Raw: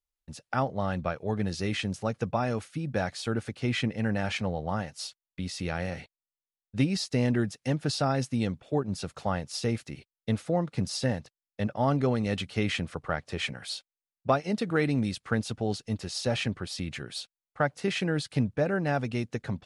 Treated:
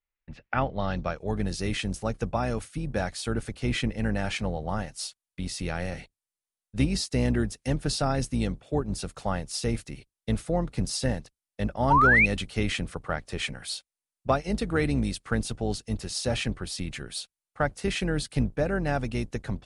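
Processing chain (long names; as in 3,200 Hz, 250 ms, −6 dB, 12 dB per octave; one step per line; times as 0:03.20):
sub-octave generator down 2 octaves, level −4 dB
low-pass filter sweep 2,200 Hz → 9,900 Hz, 0:00.49–0:01.32
sound drawn into the spectrogram rise, 0:11.90–0:12.26, 850–2,600 Hz −19 dBFS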